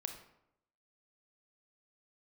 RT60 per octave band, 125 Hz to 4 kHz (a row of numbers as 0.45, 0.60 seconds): 0.85, 0.85, 0.85, 0.80, 0.65, 0.50 seconds